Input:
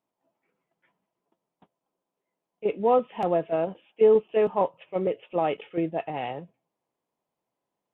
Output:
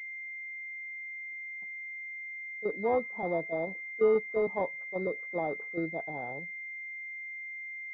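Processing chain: pulse-width modulation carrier 2100 Hz; gain -6.5 dB

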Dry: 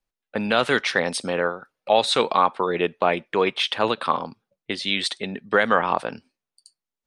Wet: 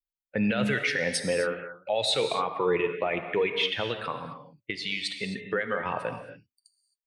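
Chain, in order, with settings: per-bin expansion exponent 1.5; ten-band EQ 125 Hz +11 dB, 250 Hz -3 dB, 500 Hz +7 dB, 1000 Hz -6 dB, 2000 Hz +11 dB; 3.83–5.86 compressor 4:1, threshold -27 dBFS, peak gain reduction 15.5 dB; limiter -17.5 dBFS, peak gain reduction 16.5 dB; non-linear reverb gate 0.29 s flat, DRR 6.5 dB

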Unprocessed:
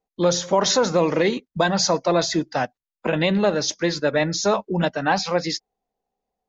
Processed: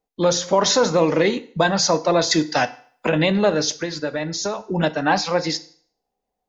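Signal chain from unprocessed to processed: 2.31–3.09 high shelf 2100 Hz +11 dB; 3.78–4.61 compressor 6:1, threshold -24 dBFS, peak gain reduction 9.5 dB; FDN reverb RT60 0.52 s, low-frequency decay 0.85×, high-frequency decay 0.95×, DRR 11.5 dB; gain +1.5 dB

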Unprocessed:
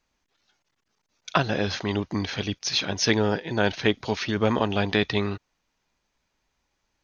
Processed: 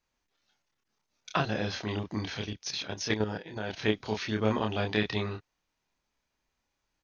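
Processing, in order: doubler 28 ms -3 dB; 2.45–3.77 level quantiser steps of 9 dB; gain -7.5 dB

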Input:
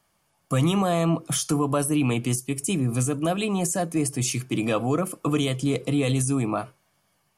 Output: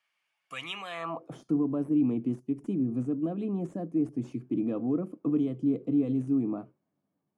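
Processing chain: tracing distortion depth 0.02 ms; band-pass sweep 2400 Hz -> 270 Hz, 0.9–1.42

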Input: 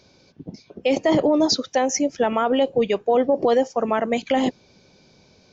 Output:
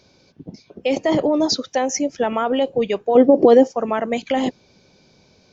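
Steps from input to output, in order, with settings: 3.15–3.72 bell 310 Hz +11 dB 1.8 oct

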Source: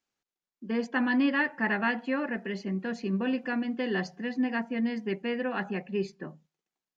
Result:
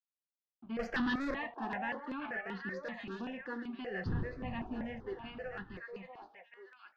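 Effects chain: ending faded out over 2.21 s; 4.05–5.77 wind noise 250 Hz -30 dBFS; high shelf 3500 Hz +8 dB; 0.79–1.34 sample leveller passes 5; crossover distortion -47 dBFS; flange 0.37 Hz, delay 5.9 ms, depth 5.6 ms, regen -69%; soft clip -27 dBFS, distortion -7 dB; air absorption 240 m; on a send: delay with a stepping band-pass 0.636 s, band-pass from 680 Hz, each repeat 1.4 oct, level -1.5 dB; on the sum: step phaser 5.2 Hz 540–2300 Hz

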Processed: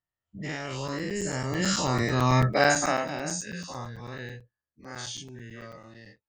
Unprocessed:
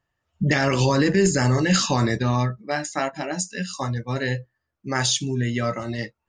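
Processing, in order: spectral dilation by 0.12 s; Doppler pass-by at 2.54, 12 m/s, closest 2 m; crackling interface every 0.11 s, samples 256, zero, from 0.88; gain +2.5 dB

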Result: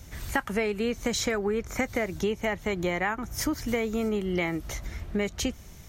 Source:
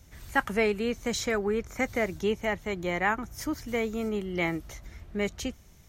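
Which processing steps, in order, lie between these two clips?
compressor 6:1, threshold -33 dBFS, peak gain reduction 14 dB; gain +8.5 dB

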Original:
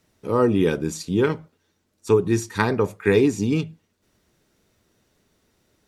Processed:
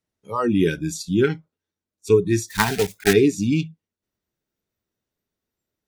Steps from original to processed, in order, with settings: 2.48–3.15 block floating point 3-bit; spectral noise reduction 21 dB; gain +2 dB

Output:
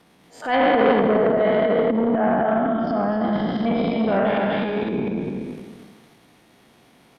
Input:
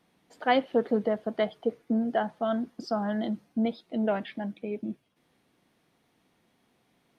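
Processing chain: spectral trails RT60 1.53 s; transient shaper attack -11 dB, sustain +12 dB; 2.18–3.33 air absorption 380 m; on a send: loudspeakers at several distances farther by 56 m -12 dB, 85 m -4 dB; on the sum: treble ducked by the level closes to 2200 Hz, closed at -19.5 dBFS; in parallel at +3 dB: compressor, threshold -35 dBFS, peak gain reduction 18.5 dB; on the sum: core saturation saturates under 800 Hz; gain +2.5 dB

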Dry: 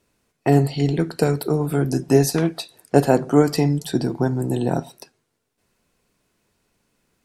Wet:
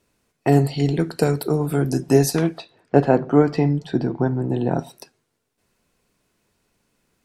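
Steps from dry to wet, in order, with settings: 2.58–4.79 LPF 2700 Hz 12 dB/oct

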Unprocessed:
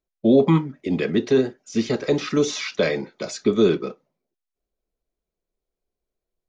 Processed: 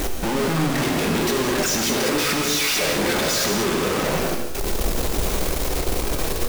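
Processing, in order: infinite clipping; non-linear reverb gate 0.24 s flat, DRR 1.5 dB

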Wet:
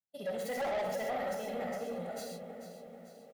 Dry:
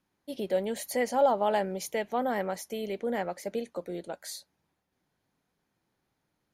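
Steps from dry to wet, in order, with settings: tracing distortion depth 0.064 ms; comb 1.5 ms, depth 91%; gate with hold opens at -56 dBFS; dark delay 0.659 s, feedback 61%, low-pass 530 Hz, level -7 dB; non-linear reverb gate 0.31 s flat, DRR -1 dB; time stretch by phase-locked vocoder 0.51×; HPF 71 Hz 24 dB/oct; soft clip -23 dBFS, distortion -8 dB; lo-fi delay 0.442 s, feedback 55%, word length 9-bit, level -11 dB; gain -8 dB

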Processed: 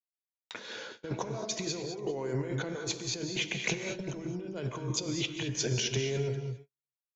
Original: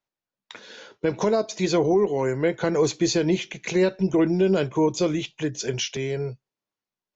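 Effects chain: negative-ratio compressor -30 dBFS, ratio -1; echo 0.4 s -21.5 dB; non-linear reverb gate 0.24 s rising, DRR 6 dB; gate -39 dBFS, range -51 dB; gain -6 dB

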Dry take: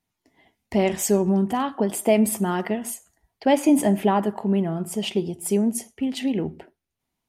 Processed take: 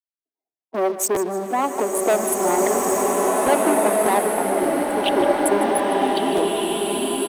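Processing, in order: Wiener smoothing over 25 samples; spectral gate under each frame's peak -15 dB strong; gate -39 dBFS, range -23 dB; sample leveller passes 3; compressor, threshold -15 dBFS, peak gain reduction 4.5 dB; HPF 340 Hz 24 dB/oct; bell 7300 Hz -6.5 dB 0.23 oct; on a send: feedback echo 0.154 s, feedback 42%, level -13.5 dB; on the sum: crackling interface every 0.58 s, samples 512, repeat, from 0.56; bloom reverb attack 1.9 s, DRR -3 dB

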